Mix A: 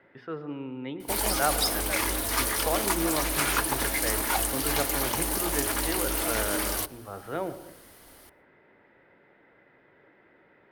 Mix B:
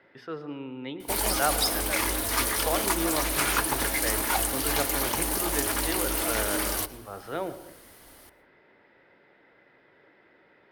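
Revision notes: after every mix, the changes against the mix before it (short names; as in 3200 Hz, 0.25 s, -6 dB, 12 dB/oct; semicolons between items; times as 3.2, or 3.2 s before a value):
speech: add tone controls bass -3 dB, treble +14 dB; background: send +8.5 dB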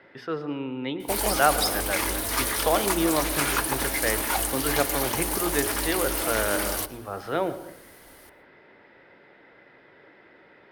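speech +6.0 dB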